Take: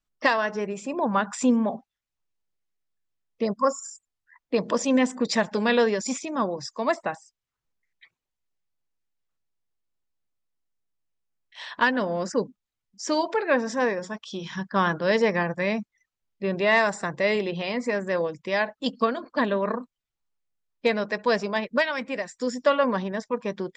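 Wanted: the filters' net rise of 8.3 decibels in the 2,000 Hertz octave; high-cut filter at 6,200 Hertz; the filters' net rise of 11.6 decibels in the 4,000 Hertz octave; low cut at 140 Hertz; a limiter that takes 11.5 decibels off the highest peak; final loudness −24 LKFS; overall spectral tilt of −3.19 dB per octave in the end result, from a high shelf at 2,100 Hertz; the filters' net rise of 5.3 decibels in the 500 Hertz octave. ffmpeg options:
ffmpeg -i in.wav -af "highpass=140,lowpass=6200,equalizer=frequency=500:width_type=o:gain=5.5,equalizer=frequency=2000:width_type=o:gain=5,highshelf=frequency=2100:gain=5,equalizer=frequency=4000:width_type=o:gain=9,volume=-0.5dB,alimiter=limit=-11.5dB:level=0:latency=1" out.wav

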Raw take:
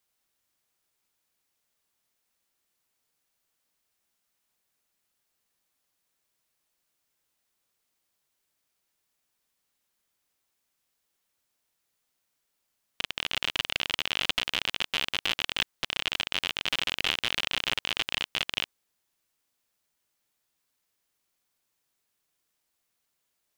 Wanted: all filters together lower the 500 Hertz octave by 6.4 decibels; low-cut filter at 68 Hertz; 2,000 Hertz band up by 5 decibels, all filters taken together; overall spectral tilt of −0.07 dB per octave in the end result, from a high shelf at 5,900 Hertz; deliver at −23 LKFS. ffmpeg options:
ffmpeg -i in.wav -af "highpass=68,equalizer=frequency=500:width_type=o:gain=-9,equalizer=frequency=2000:width_type=o:gain=7.5,highshelf=frequency=5900:gain=-3.5,volume=3dB" out.wav

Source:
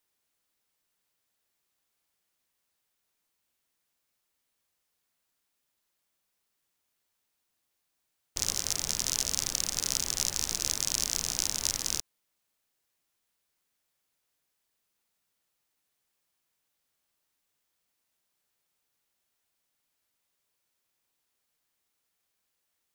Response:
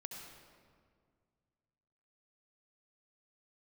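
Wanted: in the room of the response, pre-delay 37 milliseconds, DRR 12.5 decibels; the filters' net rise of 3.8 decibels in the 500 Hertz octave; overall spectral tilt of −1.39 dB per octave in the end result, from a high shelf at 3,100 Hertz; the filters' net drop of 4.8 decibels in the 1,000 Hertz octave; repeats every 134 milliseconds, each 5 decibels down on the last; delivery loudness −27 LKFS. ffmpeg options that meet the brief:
-filter_complex "[0:a]equalizer=frequency=500:width_type=o:gain=7,equalizer=frequency=1000:width_type=o:gain=-8.5,highshelf=frequency=3100:gain=-3,aecho=1:1:134|268|402|536|670|804|938:0.562|0.315|0.176|0.0988|0.0553|0.031|0.0173,asplit=2[link_01][link_02];[1:a]atrim=start_sample=2205,adelay=37[link_03];[link_02][link_03]afir=irnorm=-1:irlink=0,volume=-9.5dB[link_04];[link_01][link_04]amix=inputs=2:normalize=0,volume=2.5dB"

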